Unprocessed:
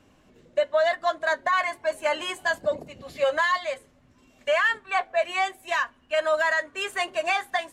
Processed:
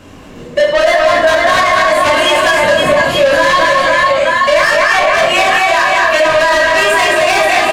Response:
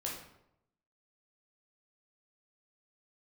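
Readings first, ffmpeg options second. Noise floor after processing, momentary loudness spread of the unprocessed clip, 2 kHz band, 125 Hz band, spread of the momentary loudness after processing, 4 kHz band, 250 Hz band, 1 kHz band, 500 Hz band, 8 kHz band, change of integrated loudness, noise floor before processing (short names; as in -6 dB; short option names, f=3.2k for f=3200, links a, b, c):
-31 dBFS, 7 LU, +16.0 dB, +25.0 dB, 1 LU, +18.5 dB, +21.5 dB, +16.0 dB, +15.5 dB, +20.0 dB, +16.0 dB, -60 dBFS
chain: -filter_complex "[0:a]aecho=1:1:220|506|877.8|1361|1989:0.631|0.398|0.251|0.158|0.1,asoftclip=type=tanh:threshold=-26dB[a];[1:a]atrim=start_sample=2205,atrim=end_sample=6174[b];[a][b]afir=irnorm=-1:irlink=0,alimiter=level_in=23.5dB:limit=-1dB:release=50:level=0:latency=1,volume=-1dB"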